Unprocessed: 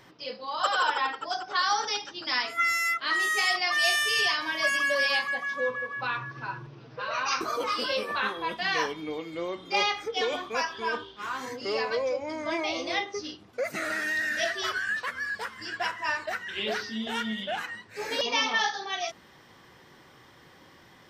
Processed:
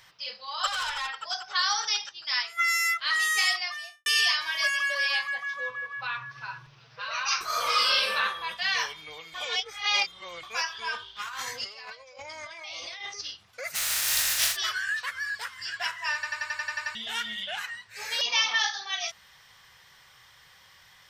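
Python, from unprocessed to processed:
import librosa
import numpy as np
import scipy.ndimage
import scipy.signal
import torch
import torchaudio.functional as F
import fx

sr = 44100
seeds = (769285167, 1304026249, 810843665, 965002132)

y = fx.tube_stage(x, sr, drive_db=25.0, bias=0.3, at=(0.67, 1.09))
y = fx.upward_expand(y, sr, threshold_db=-36.0, expansion=1.5, at=(2.09, 2.68))
y = fx.studio_fade_out(y, sr, start_s=3.41, length_s=0.65)
y = fx.high_shelf(y, sr, hz=4600.0, db=-9.0, at=(4.67, 6.31))
y = fx.reverb_throw(y, sr, start_s=7.45, length_s=0.71, rt60_s=0.81, drr_db=-5.5)
y = fx.over_compress(y, sr, threshold_db=-38.0, ratio=-1.0, at=(11.15, 13.2), fade=0.02)
y = fx.spec_flatten(y, sr, power=0.24, at=(13.74, 14.55), fade=0.02)
y = fx.edit(y, sr, fx.reverse_span(start_s=9.34, length_s=1.09),
    fx.stutter_over(start_s=16.14, slice_s=0.09, count=9), tone=tone)
y = fx.tone_stack(y, sr, knobs='10-0-10')
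y = y * librosa.db_to_amplitude(5.5)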